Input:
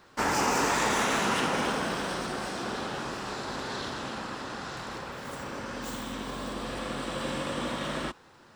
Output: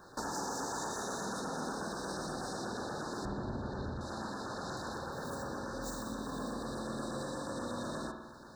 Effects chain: 3.25–4.01 RIAA curve playback; LFO notch saw down 8.3 Hz 970–4700 Hz; dynamic EQ 6600 Hz, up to +5 dB, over -49 dBFS, Q 1.2; compressor 5:1, threshold -41 dBFS, peak gain reduction 16 dB; spring tank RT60 1.1 s, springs 50 ms, chirp 50 ms, DRR 3.5 dB; FFT band-reject 1800–3600 Hz; gain +2.5 dB

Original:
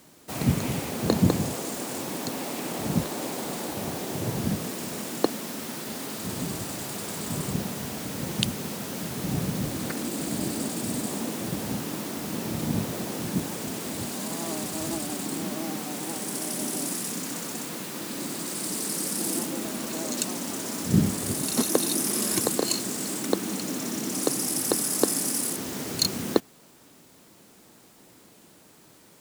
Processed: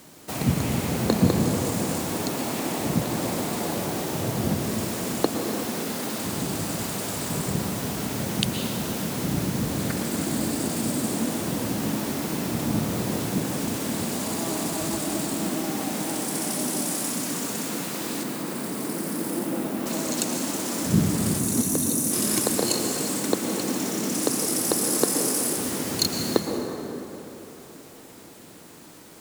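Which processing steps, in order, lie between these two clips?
18.23–19.86 bell 6800 Hz -12 dB 2.3 oct; 21.39–22.12 spectral gain 310–5600 Hz -9 dB; in parallel at +0.5 dB: compressor, threshold -38 dBFS, peak gain reduction 22 dB; on the sum: reverb RT60 3.7 s, pre-delay 0.103 s, DRR 2 dB; gain -1 dB

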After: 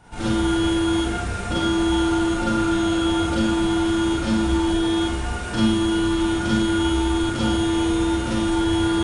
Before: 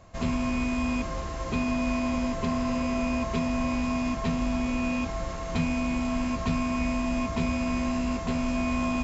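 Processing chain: pitch shift +5 st; Schroeder reverb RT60 0.66 s, combs from 32 ms, DRR -6.5 dB

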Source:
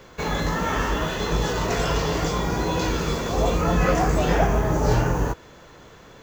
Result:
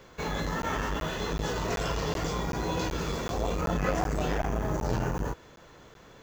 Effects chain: crackling interface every 0.38 s, samples 512, zero, from 0.62; core saturation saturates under 280 Hz; gain -5.5 dB

